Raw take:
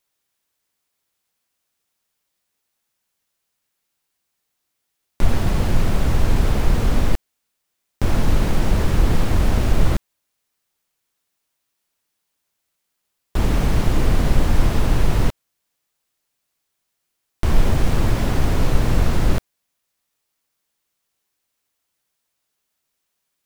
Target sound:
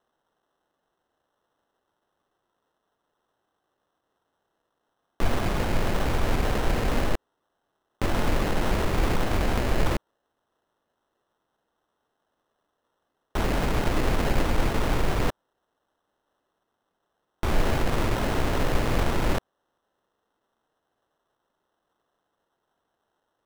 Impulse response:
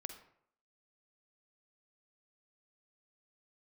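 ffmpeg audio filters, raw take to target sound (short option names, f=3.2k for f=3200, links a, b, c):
-af "acrusher=samples=19:mix=1:aa=0.000001,bass=f=250:g=-9,treble=f=4k:g=-5"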